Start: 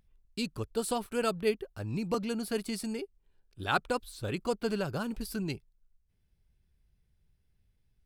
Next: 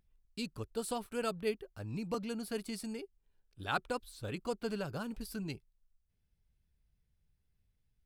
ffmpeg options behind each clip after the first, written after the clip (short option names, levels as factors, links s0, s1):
-af "bandreject=f=370:w=12,volume=0.531"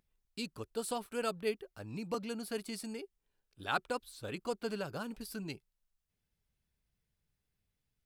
-af "lowshelf=f=120:g=-12,volume=1.12"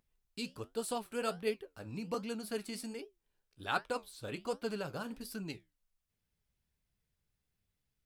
-af "flanger=delay=8.1:depth=8.5:regen=-68:speed=1.3:shape=triangular,volume=1.58"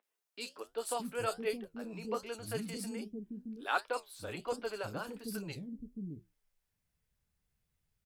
-filter_complex "[0:a]acrossover=split=330|3700[s0][s1][s2];[s2]adelay=30[s3];[s0]adelay=620[s4];[s4][s1][s3]amix=inputs=3:normalize=0,volume=1.26"